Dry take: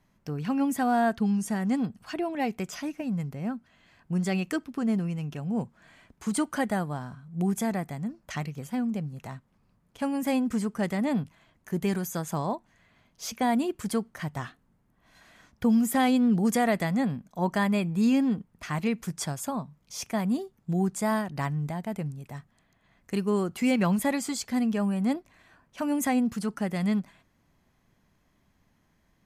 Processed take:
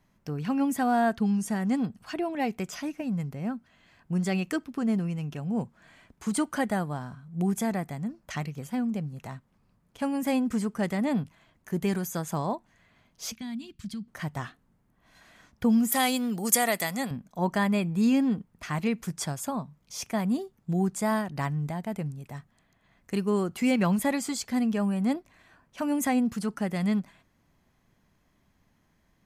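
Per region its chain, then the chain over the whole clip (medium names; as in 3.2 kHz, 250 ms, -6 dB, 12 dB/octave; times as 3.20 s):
13.35–14.08 s: FFT filter 210 Hz 0 dB, 360 Hz -19 dB, 580 Hz -26 dB, 4 kHz -1 dB, 9.8 kHz -15 dB + compression 2.5:1, threshold -34 dBFS
15.92–17.11 s: RIAA curve recording + band-stop 1.6 kHz, Q 18 + tape noise reduction on one side only decoder only
whole clip: none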